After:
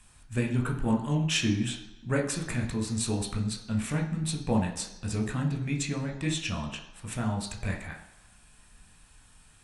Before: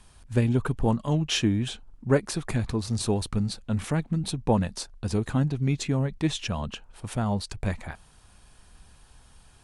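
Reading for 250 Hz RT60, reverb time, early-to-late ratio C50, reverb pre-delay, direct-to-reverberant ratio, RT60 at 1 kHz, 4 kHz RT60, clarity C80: 0.85 s, 1.0 s, 8.5 dB, 15 ms, 1.0 dB, 1.0 s, 0.95 s, 11.5 dB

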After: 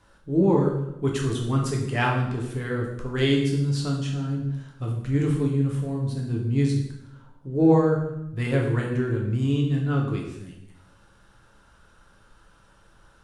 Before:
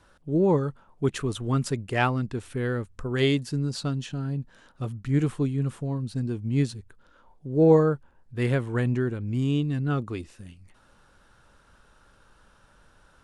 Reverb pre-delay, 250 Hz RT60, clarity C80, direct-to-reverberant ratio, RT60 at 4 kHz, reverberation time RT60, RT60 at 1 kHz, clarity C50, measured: 7 ms, 1.1 s, 7.0 dB, -0.5 dB, 0.75 s, 0.85 s, 0.80 s, 4.5 dB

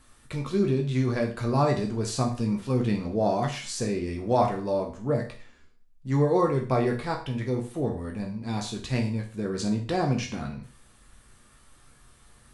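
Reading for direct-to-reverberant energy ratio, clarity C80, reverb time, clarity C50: 1.0 dB, 14.0 dB, 0.40 s, 9.5 dB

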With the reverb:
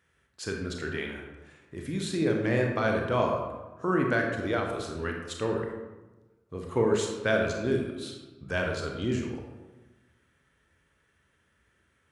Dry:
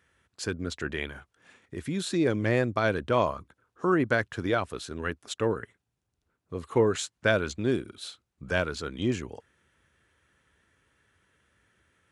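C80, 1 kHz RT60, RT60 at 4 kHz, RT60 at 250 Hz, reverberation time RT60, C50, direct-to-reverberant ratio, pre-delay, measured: 5.5 dB, 1.1 s, 0.70 s, 1.4 s, 1.1 s, 3.0 dB, 1.0 dB, 26 ms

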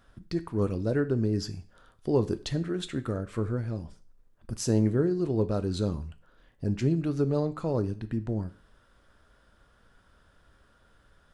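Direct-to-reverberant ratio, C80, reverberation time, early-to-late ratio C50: 11.0 dB, 21.0 dB, 0.45 s, 17.5 dB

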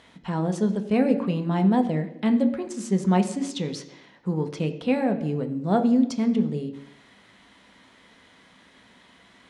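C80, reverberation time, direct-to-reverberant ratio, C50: 14.0 dB, 0.85 s, 6.0 dB, 12.0 dB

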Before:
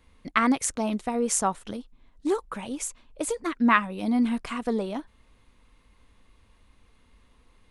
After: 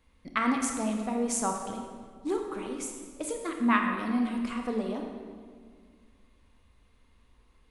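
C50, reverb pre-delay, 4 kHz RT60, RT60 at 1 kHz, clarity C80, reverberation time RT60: 3.5 dB, 24 ms, 1.3 s, 1.7 s, 5.5 dB, 1.9 s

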